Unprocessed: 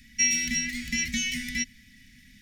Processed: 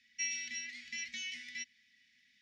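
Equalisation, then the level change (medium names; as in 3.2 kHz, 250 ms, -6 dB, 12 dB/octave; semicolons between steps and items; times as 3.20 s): band-pass filter 6.6 kHz, Q 2.1; distance through air 370 m; +8.5 dB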